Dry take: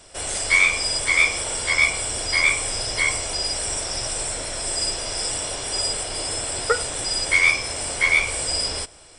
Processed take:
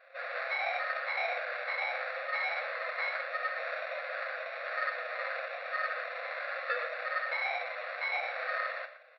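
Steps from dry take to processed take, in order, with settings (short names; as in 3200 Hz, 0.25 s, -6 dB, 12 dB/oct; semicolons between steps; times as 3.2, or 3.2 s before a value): flange 0.31 Hz, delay 5.2 ms, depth 3.4 ms, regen +34%; on a send at -2 dB: reverb RT60 0.35 s, pre-delay 3 ms; on the sum: sample-rate reducer 3100 Hz, jitter 0%; brick-wall FIR band-pass 490–5600 Hz; echo 0.117 s -13 dB; limiter -15 dBFS, peak gain reduction 9.5 dB; bell 720 Hz +6.5 dB 1.8 oct; fixed phaser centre 2200 Hz, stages 4; gain -4 dB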